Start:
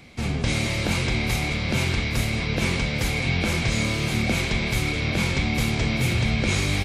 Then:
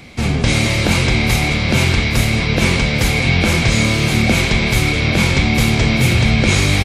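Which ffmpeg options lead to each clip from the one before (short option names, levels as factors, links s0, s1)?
-af "aecho=1:1:90:0.119,volume=2.82"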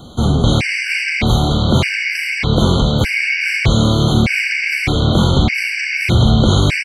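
-filter_complex "[0:a]asoftclip=type=tanh:threshold=0.631,acrossover=split=4800[s0][s1];[s1]acompressor=threshold=0.0141:ratio=4:attack=1:release=60[s2];[s0][s2]amix=inputs=2:normalize=0,afftfilt=real='re*gt(sin(2*PI*0.82*pts/sr)*(1-2*mod(floor(b*sr/1024/1500),2)),0)':imag='im*gt(sin(2*PI*0.82*pts/sr)*(1-2*mod(floor(b*sr/1024/1500),2)),0)':win_size=1024:overlap=0.75,volume=1.58"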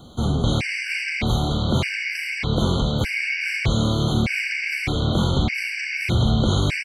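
-af "acrusher=bits=10:mix=0:aa=0.000001,volume=0.422"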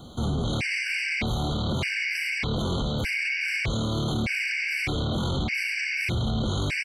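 -af "alimiter=limit=0.1:level=0:latency=1:release=13"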